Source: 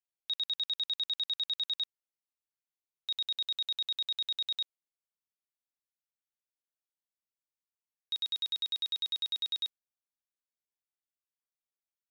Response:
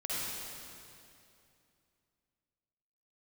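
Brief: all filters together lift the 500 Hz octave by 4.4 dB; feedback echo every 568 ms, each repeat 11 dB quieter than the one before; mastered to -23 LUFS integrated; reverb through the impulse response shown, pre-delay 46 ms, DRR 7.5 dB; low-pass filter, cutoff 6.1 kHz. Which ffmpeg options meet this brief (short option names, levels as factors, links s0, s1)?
-filter_complex "[0:a]lowpass=6100,equalizer=f=500:t=o:g=5.5,aecho=1:1:568|1136|1704:0.282|0.0789|0.0221,asplit=2[s0][s1];[1:a]atrim=start_sample=2205,adelay=46[s2];[s1][s2]afir=irnorm=-1:irlink=0,volume=0.237[s3];[s0][s3]amix=inputs=2:normalize=0,volume=2.99"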